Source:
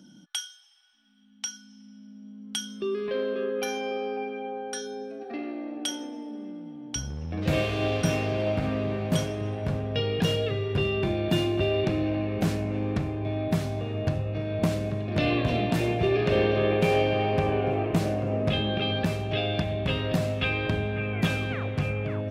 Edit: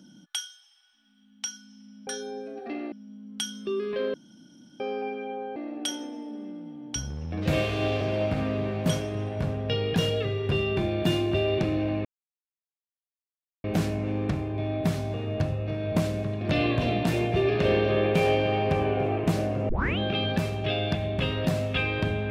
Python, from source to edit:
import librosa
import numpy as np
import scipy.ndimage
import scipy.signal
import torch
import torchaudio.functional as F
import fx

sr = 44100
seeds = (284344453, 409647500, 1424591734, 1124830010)

y = fx.edit(x, sr, fx.room_tone_fill(start_s=3.29, length_s=0.66),
    fx.move(start_s=4.71, length_s=0.85, to_s=2.07),
    fx.cut(start_s=8.01, length_s=0.26),
    fx.insert_silence(at_s=12.31, length_s=1.59),
    fx.tape_start(start_s=18.36, length_s=0.29), tone=tone)